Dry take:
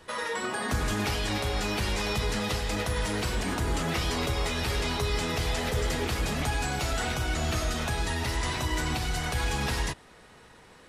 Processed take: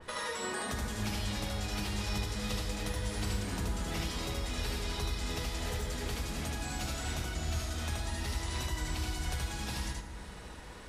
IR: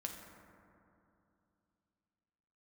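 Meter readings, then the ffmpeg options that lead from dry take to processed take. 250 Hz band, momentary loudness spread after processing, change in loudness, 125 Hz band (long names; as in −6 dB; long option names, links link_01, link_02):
−6.5 dB, 2 LU, −6.5 dB, −5.5 dB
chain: -filter_complex "[0:a]lowshelf=frequency=96:gain=7.5,acompressor=threshold=-39dB:ratio=4,asplit=2[link_01][link_02];[1:a]atrim=start_sample=2205,adelay=76[link_03];[link_02][link_03]afir=irnorm=-1:irlink=0,volume=1.5dB[link_04];[link_01][link_04]amix=inputs=2:normalize=0,adynamicequalizer=threshold=0.00178:dfrequency=3200:dqfactor=0.7:tfrequency=3200:tqfactor=0.7:attack=5:release=100:ratio=0.375:range=3:mode=boostabove:tftype=highshelf"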